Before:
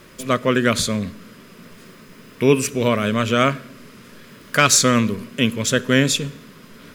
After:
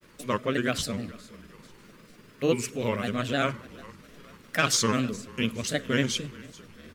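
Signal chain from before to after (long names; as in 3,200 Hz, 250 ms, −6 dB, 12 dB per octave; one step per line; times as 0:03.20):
echo with shifted repeats 428 ms, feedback 50%, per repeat −32 Hz, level −21 dB
granular cloud, spray 10 ms, pitch spread up and down by 3 semitones
level −8 dB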